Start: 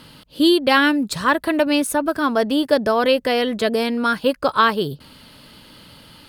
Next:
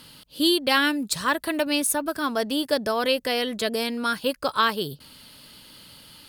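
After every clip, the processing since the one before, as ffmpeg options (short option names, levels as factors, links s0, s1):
-af "highshelf=f=3300:g=11.5,volume=0.422"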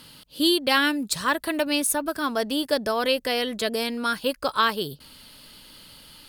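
-af "asubboost=boost=3:cutoff=51"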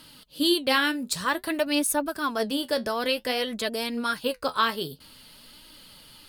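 -af "flanger=delay=3.1:depth=9.7:regen=56:speed=0.53:shape=sinusoidal,volume=1.26"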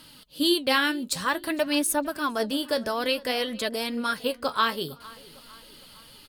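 -filter_complex "[0:a]asplit=2[s0][s1];[s1]adelay=456,lowpass=f=3600:p=1,volume=0.0891,asplit=2[s2][s3];[s3]adelay=456,lowpass=f=3600:p=1,volume=0.52,asplit=2[s4][s5];[s5]adelay=456,lowpass=f=3600:p=1,volume=0.52,asplit=2[s6][s7];[s7]adelay=456,lowpass=f=3600:p=1,volume=0.52[s8];[s0][s2][s4][s6][s8]amix=inputs=5:normalize=0"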